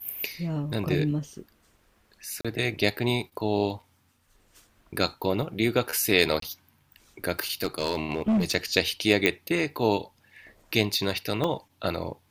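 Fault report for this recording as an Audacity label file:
2.410000	2.450000	gap 36 ms
6.400000	6.420000	gap 23 ms
7.630000	8.540000	clipped -19.5 dBFS
9.260000	9.260000	pop -8 dBFS
11.440000	11.440000	gap 2.4 ms

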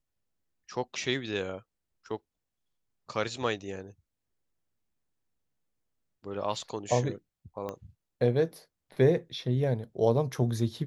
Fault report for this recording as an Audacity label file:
7.690000	7.690000	pop -23 dBFS

